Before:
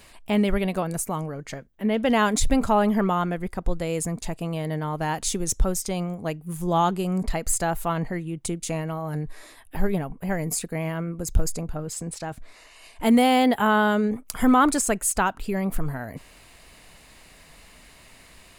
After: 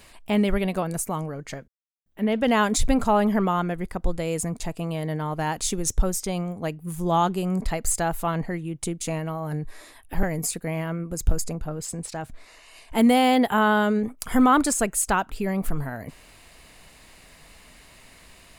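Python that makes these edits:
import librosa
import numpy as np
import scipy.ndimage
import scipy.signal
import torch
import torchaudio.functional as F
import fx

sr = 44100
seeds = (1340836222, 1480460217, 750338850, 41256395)

y = fx.edit(x, sr, fx.insert_silence(at_s=1.68, length_s=0.38),
    fx.cut(start_s=9.85, length_s=0.46), tone=tone)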